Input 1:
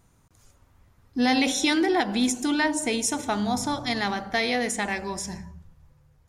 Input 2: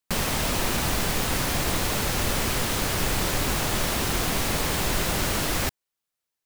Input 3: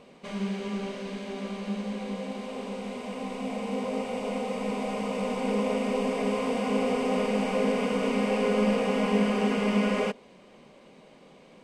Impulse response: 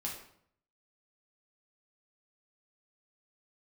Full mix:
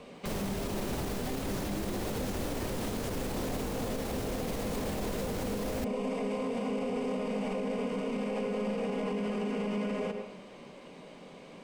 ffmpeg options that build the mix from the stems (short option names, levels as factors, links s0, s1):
-filter_complex "[0:a]volume=0.299[s0];[1:a]adelay=150,volume=1.33[s1];[2:a]volume=1.06,asplit=2[s2][s3];[s3]volume=0.596[s4];[3:a]atrim=start_sample=2205[s5];[s4][s5]afir=irnorm=-1:irlink=0[s6];[s0][s1][s2][s6]amix=inputs=4:normalize=0,acrossover=split=210|680[s7][s8][s9];[s7]acompressor=threshold=0.0355:ratio=4[s10];[s8]acompressor=threshold=0.0501:ratio=4[s11];[s9]acompressor=threshold=0.0141:ratio=4[s12];[s10][s11][s12]amix=inputs=3:normalize=0,alimiter=level_in=1.19:limit=0.0631:level=0:latency=1:release=68,volume=0.841"